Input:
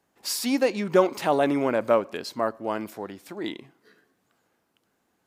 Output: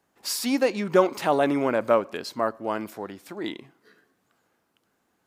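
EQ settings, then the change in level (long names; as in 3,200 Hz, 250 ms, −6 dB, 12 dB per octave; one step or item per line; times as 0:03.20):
parametric band 1,300 Hz +2 dB
0.0 dB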